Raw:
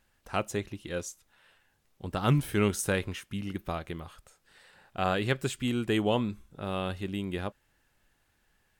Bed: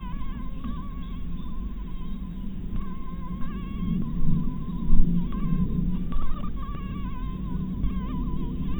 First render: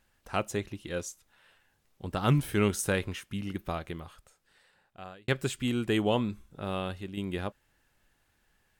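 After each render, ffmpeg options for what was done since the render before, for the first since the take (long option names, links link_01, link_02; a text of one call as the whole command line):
ffmpeg -i in.wav -filter_complex "[0:a]asplit=3[link_01][link_02][link_03];[link_01]atrim=end=5.28,asetpts=PTS-STARTPTS,afade=type=out:start_time=3.83:duration=1.45[link_04];[link_02]atrim=start=5.28:end=7.17,asetpts=PTS-STARTPTS,afade=type=in:duration=0.004:curve=hsin,afade=type=out:start_time=1.43:duration=0.46:silence=0.446684[link_05];[link_03]atrim=start=7.17,asetpts=PTS-STARTPTS,afade=type=in:duration=0.004:curve=hsin:silence=0.446684[link_06];[link_04][link_05][link_06]concat=n=3:v=0:a=1" out.wav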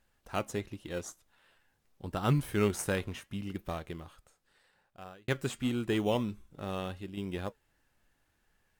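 ffmpeg -i in.wav -filter_complex "[0:a]flanger=delay=1.6:depth=2.8:regen=88:speed=0.81:shape=triangular,asplit=2[link_01][link_02];[link_02]acrusher=samples=14:mix=1:aa=0.000001:lfo=1:lforange=8.4:lforate=0.33,volume=-11dB[link_03];[link_01][link_03]amix=inputs=2:normalize=0" out.wav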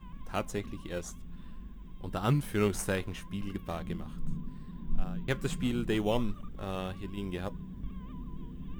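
ffmpeg -i in.wav -i bed.wav -filter_complex "[1:a]volume=-13dB[link_01];[0:a][link_01]amix=inputs=2:normalize=0" out.wav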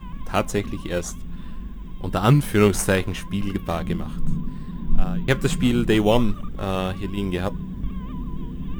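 ffmpeg -i in.wav -af "volume=11.5dB" out.wav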